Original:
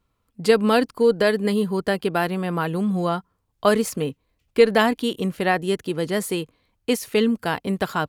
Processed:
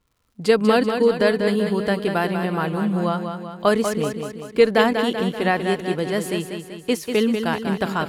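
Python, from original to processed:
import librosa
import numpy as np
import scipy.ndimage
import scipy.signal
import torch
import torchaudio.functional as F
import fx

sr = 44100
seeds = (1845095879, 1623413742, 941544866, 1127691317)

y = fx.high_shelf(x, sr, hz=11000.0, db=-8.5)
y = fx.dmg_crackle(y, sr, seeds[0], per_s=74.0, level_db=-52.0)
y = fx.echo_feedback(y, sr, ms=192, feedback_pct=55, wet_db=-7)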